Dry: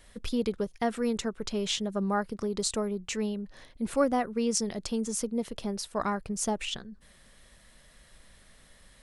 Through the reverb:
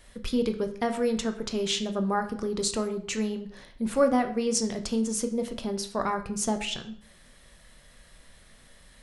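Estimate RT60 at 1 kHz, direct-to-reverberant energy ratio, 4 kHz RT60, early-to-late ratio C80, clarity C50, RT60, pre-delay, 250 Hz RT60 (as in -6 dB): 0.55 s, 6.0 dB, 0.45 s, 14.5 dB, 11.5 dB, 0.55 s, 8 ms, 0.55 s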